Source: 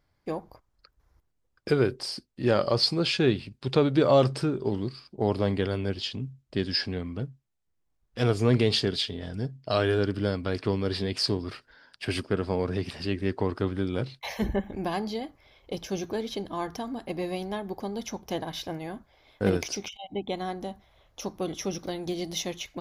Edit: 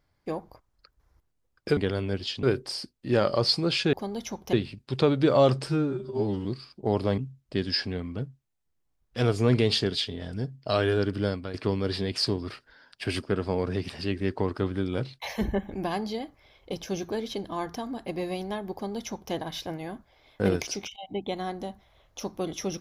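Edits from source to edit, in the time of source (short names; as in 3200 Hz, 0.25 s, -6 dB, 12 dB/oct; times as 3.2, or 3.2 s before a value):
4.41–4.8 stretch 2×
5.53–6.19 move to 1.77
10.3–10.55 fade out, to -10.5 dB
17.74–18.34 copy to 3.27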